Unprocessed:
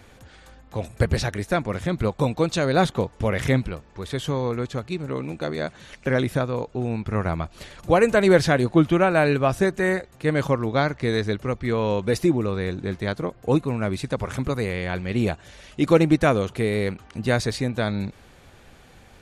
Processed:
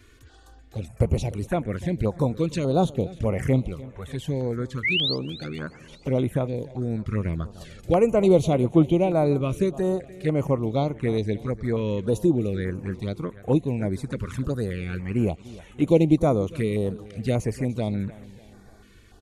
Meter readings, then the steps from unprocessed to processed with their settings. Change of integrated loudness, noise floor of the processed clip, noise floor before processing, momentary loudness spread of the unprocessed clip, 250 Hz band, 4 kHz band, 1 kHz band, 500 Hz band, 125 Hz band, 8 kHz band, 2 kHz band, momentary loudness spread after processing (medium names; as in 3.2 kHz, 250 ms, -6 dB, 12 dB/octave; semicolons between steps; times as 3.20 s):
-1.5 dB, -51 dBFS, -51 dBFS, 12 LU, -0.5 dB, +1.0 dB, -5.5 dB, -2.0 dB, 0.0 dB, -6.0 dB, -7.5 dB, 13 LU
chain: dynamic bell 4.7 kHz, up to -6 dB, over -43 dBFS, Q 1; painted sound rise, 4.83–5.18 s, 1.9–5.2 kHz -21 dBFS; touch-sensitive flanger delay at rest 3 ms, full sweep at -18.5 dBFS; on a send: feedback delay 296 ms, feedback 47%, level -19 dB; on the sum: step-sequenced notch 3.4 Hz 760–4800 Hz